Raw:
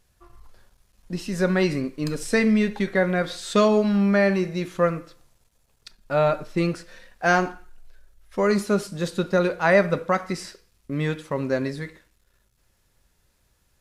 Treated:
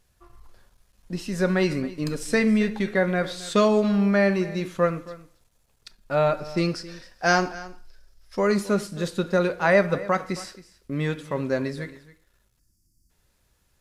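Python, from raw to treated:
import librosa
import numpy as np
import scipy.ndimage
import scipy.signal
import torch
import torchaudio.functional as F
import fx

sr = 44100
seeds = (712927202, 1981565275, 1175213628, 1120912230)

y = fx.peak_eq(x, sr, hz=5100.0, db=14.0, octaves=0.38, at=(6.37, 8.39))
y = fx.spec_box(y, sr, start_s=12.59, length_s=0.51, low_hz=350.0, high_hz=4500.0, gain_db=-29)
y = y + 10.0 ** (-18.0 / 20.0) * np.pad(y, (int(270 * sr / 1000.0), 0))[:len(y)]
y = y * librosa.db_to_amplitude(-1.0)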